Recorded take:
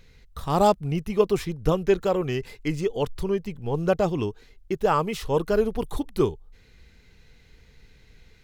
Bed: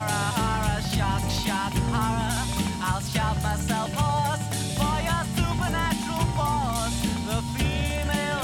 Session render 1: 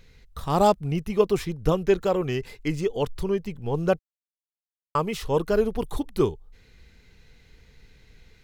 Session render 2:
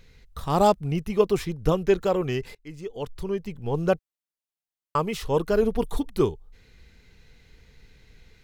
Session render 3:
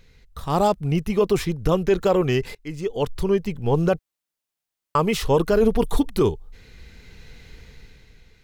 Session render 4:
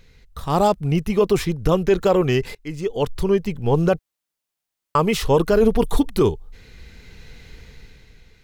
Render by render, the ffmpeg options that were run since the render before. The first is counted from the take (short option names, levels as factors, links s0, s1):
-filter_complex "[0:a]asplit=3[s0][s1][s2];[s0]atrim=end=3.99,asetpts=PTS-STARTPTS,afade=t=out:st=3.986:d=0.004:c=hsin[s3];[s1]atrim=start=3.99:end=4.95,asetpts=PTS-STARTPTS,volume=0[s4];[s2]atrim=start=4.95,asetpts=PTS-STARTPTS,afade=t=in:d=0.004:c=hsin[s5];[s3][s4][s5]concat=n=3:v=0:a=1"
-filter_complex "[0:a]asettb=1/sr,asplit=3[s0][s1][s2];[s0]atrim=end=5.624[s3];[s1]atrim=start=5.62:end=6.1,asetpts=PTS-STARTPTS,afade=t=in:d=0.004:c=qsin,afade=t=out:st=0.476:d=0.004:c=qsin,aecho=1:1:4.3:0.47,atrim=end_sample=21168[s4];[s2]atrim=start=6.096[s5];[s3][s4]acrossfade=d=0.004:c1=hsin:c2=qsin[s6];[s6][s5]acrossfade=d=0.004:c1=qsin:c2=hsin,asplit=2[s7][s8];[s7]atrim=end=2.55,asetpts=PTS-STARTPTS,afade=t=out:st=2.546:d=0.004:c=hsin:silence=0.0841395[s9];[s8]atrim=start=2.55,asetpts=PTS-STARTPTS,afade=t=in:d=1.14:silence=0.0841395[s10];[s9][s10]concat=n=2:v=0:a=1"
-af "dynaudnorm=f=110:g=13:m=3.16,alimiter=limit=0.335:level=0:latency=1:release=23"
-af "volume=1.26"